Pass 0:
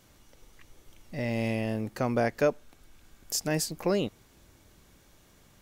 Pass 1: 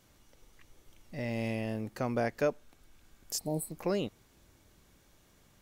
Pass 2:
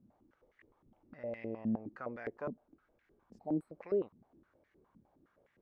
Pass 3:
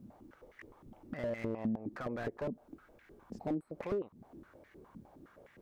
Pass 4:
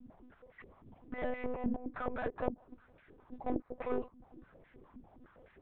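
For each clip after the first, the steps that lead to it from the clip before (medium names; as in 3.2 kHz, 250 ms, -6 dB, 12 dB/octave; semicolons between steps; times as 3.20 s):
spectral replace 3.41–3.69 s, 1–7.8 kHz after; trim -4.5 dB
tilt EQ -3 dB/octave; in parallel at -2 dB: compression, threshold -34 dBFS, peak gain reduction 12.5 dB; on the sum: step-sequenced band-pass 9.7 Hz 220–1900 Hz; trim -1.5 dB
compression 12:1, threshold -44 dBFS, peak gain reduction 16.5 dB; slew-rate limiter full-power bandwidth 3 Hz; trim +12.5 dB
monotone LPC vocoder at 8 kHz 250 Hz; dynamic bell 950 Hz, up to +6 dB, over -55 dBFS, Q 0.71; loudspeaker Doppler distortion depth 0.28 ms; trim -1 dB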